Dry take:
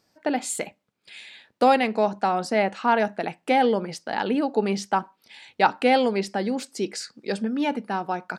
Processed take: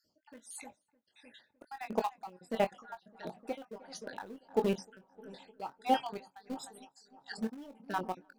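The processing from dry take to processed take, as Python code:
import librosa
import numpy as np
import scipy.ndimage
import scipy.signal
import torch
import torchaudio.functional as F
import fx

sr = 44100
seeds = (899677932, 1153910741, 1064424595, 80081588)

p1 = fx.spec_dropout(x, sr, seeds[0], share_pct=59)
p2 = fx.peak_eq(p1, sr, hz=2200.0, db=-10.0, octaves=0.4)
p3 = np.where(np.abs(p2) >= 10.0 ** (-22.5 / 20.0), p2, 0.0)
p4 = p2 + (p3 * 10.0 ** (-8.0 / 20.0))
p5 = fx.doubler(p4, sr, ms=22.0, db=-9.5)
p6 = p5 + fx.echo_filtered(p5, sr, ms=305, feedback_pct=79, hz=1900.0, wet_db=-19, dry=0)
p7 = p6 * 10.0 ** (-20 * (0.5 - 0.5 * np.cos(2.0 * np.pi * 1.5 * np.arange(len(p6)) / sr)) / 20.0)
y = p7 * 10.0 ** (-5.5 / 20.0)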